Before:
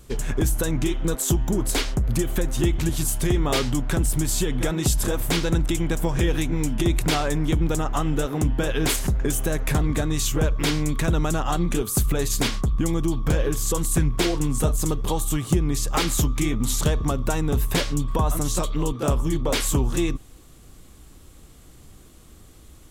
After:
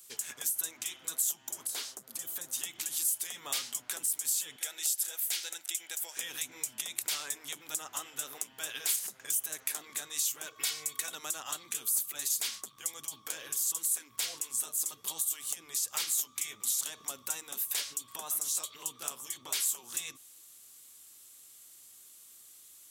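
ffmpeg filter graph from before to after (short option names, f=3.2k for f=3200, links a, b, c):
-filter_complex "[0:a]asettb=1/sr,asplit=3[a][b][c];[a]atrim=end=1.674[d];[b]atrim=start=1.67:end=2.53,asetpts=PTS-STARTPTS,afade=t=in:d=0.004:c=qsin,afade=t=out:st=0.856:d=0.004:c=qsin,acrossover=split=3700[e][f];[f]acompressor=threshold=-36dB:ratio=4:attack=1:release=60[g];[e][g]amix=inputs=2:normalize=0,equalizer=f=2.3k:t=o:w=1.1:g=-8[h];[c]atrim=start=2.526[i];[d][h]acrossfade=d=0.004:c1=hsin:c2=qsin[j];[j][i]acrossfade=d=0.004:c1=qsin:c2=hsin,asettb=1/sr,asplit=3[k][l][m];[k]atrim=end=4.564[n];[l]atrim=start=4.56:end=6.17,asetpts=PTS-STARTPTS,afade=t=in:d=0.004:c=qsin,afade=t=out:st=1.606:d=0.004:c=qsin,highpass=650,equalizer=f=1.1k:t=o:w=0.3:g=-13[o];[m]atrim=start=6.166[p];[n][o]acrossfade=d=0.004:c1=hsin:c2=qsin[q];[q][p]acrossfade=d=0.004:c1=qsin:c2=hsin,asettb=1/sr,asplit=3[r][s][t];[r]atrim=end=10.464[u];[s]atrim=start=10.46:end=11.15,asetpts=PTS-STARTPTS,afade=t=in:d=0.004:c=qsin,afade=t=out:st=0.686:d=0.004:c=qsin,equalizer=f=530:t=o:w=0.34:g=6,aecho=1:1:2.7:0.71,atrim=end_sample=30429,asoftclip=type=hard:threshold=-11dB[v];[t]atrim=start=11.146[w];[u][v]acrossfade=d=0.004:c1=hsin:c2=qsin[x];[x][w]acrossfade=d=0.004:c1=qsin:c2=hsin,afftfilt=real='re*lt(hypot(re,im),0.398)':imag='im*lt(hypot(re,im),0.398)':win_size=1024:overlap=0.75,aderivative,acompressor=threshold=-34dB:ratio=2,volume=2dB"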